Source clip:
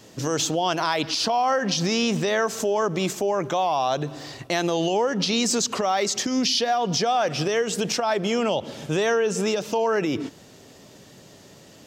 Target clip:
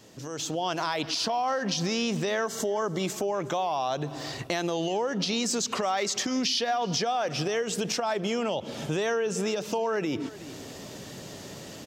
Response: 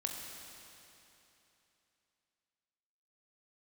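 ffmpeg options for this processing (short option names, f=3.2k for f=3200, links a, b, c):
-filter_complex "[0:a]asettb=1/sr,asplit=3[a][b][c];[a]atrim=end=5.674[d];[b]atrim=start=5.67:end=7.04,asetpts=PTS-STARTPTS,afade=t=in:d=0.004:c=qsin,afade=t=out:st=1.366:d=0.004:c=qsin,equalizer=f=1.9k:w=0.53:g=3.5[e];[c]atrim=start=7.036[f];[d][e]acrossfade=d=0.004:c1=hsin:c2=qsin[g];[g][f]acrossfade=d=0.004:c1=qsin:c2=hsin,aecho=1:1:369:0.0668,acompressor=threshold=-43dB:ratio=2,asettb=1/sr,asplit=3[h][i][j];[h]atrim=end=2.464[k];[i]atrim=start=2.46:end=3.03,asetpts=PTS-STARTPTS,afade=t=in:d=0.004:c=qsin,afade=t=out:st=0.566:d=0.004:c=qsin,asuperstop=centerf=2500:order=20:qfactor=6.7[l];[j]atrim=start=3.026[m];[k][l]acrossfade=d=0.004:c1=hsin:c2=qsin[n];[n][m]acrossfade=d=0.004:c1=qsin:c2=hsin,dynaudnorm=f=170:g=5:m=11.5dB,volume=-4.5dB"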